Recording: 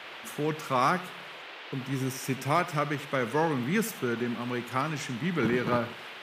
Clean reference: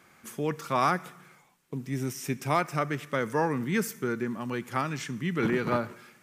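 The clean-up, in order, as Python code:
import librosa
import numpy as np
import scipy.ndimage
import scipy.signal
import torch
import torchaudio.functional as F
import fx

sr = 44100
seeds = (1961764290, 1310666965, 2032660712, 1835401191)

y = fx.noise_reduce(x, sr, print_start_s=1.22, print_end_s=1.72, reduce_db=14.0)
y = fx.fix_echo_inverse(y, sr, delay_ms=84, level_db=-17.0)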